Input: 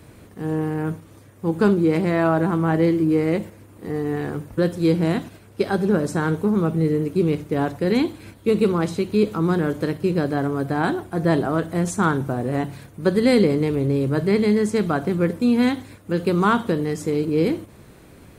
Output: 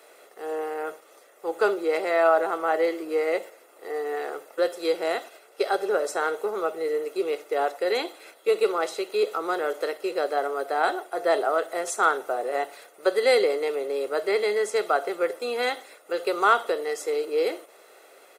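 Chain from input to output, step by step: elliptic high-pass 380 Hz, stop band 80 dB; comb 1.5 ms, depth 51%

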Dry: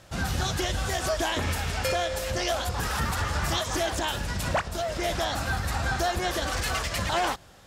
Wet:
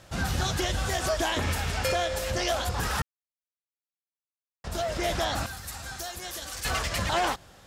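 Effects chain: 3.02–4.64 mute; 5.46–6.65 pre-emphasis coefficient 0.8

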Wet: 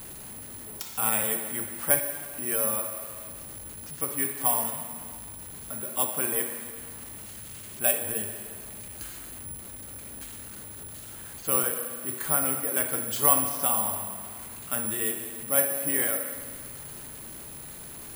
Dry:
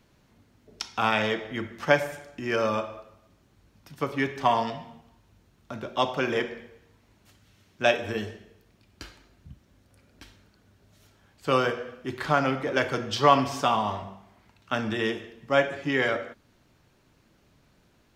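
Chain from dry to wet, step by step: zero-crossing step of -33 dBFS; spring tank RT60 2 s, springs 54 ms, chirp 45 ms, DRR 9 dB; careless resampling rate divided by 4×, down filtered, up zero stuff; gain -9 dB

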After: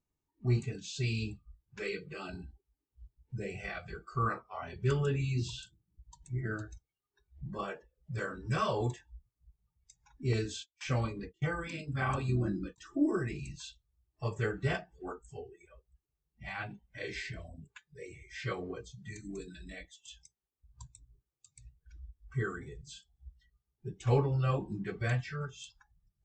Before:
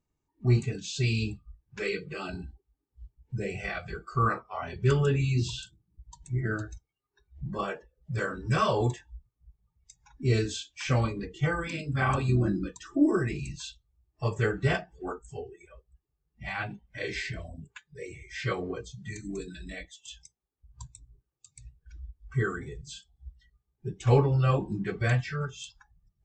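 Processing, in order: 10.33–12.78 gate -38 dBFS, range -24 dB; gain -6 dB

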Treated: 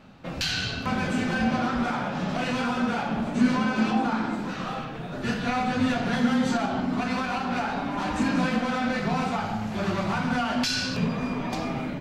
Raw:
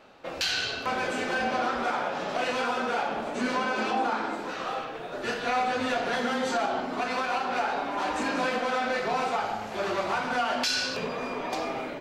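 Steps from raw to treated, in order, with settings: resonant low shelf 280 Hz +13 dB, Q 1.5

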